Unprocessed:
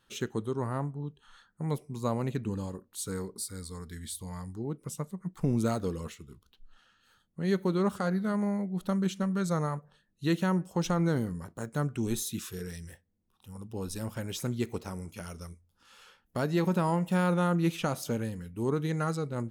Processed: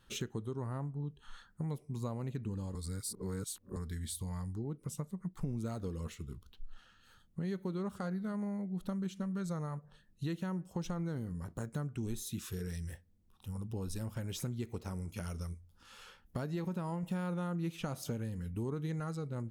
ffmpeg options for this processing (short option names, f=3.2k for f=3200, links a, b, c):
-filter_complex "[0:a]asplit=5[a][b][c][d][e];[a]atrim=end=2.752[f];[b]atrim=start=2.748:end=3.762,asetpts=PTS-STARTPTS,areverse[g];[c]atrim=start=3.758:end=17.032[h];[d]atrim=start=17.028:end=19.002,asetpts=PTS-STARTPTS,volume=3dB[i];[e]atrim=start=18.998[j];[f][g]acrossfade=d=0.004:c1=hsin:c2=hsin[k];[k][h]acrossfade=d=0.004:c1=hsin:c2=hsin[l];[l][i]acrossfade=d=0.004:c1=hsin:c2=hsin[m];[m][j]acrossfade=d=0.004:c1=hsin:c2=hsin,lowshelf=f=130:g=11,acompressor=threshold=-38dB:ratio=4,volume=1dB"